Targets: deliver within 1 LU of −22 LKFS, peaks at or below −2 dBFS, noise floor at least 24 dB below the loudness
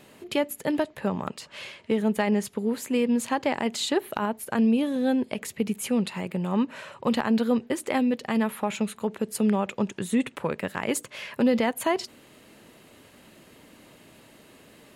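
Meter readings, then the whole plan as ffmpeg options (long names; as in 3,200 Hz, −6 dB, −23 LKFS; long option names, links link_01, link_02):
integrated loudness −27.0 LKFS; sample peak −12.0 dBFS; target loudness −22.0 LKFS
→ -af "volume=5dB"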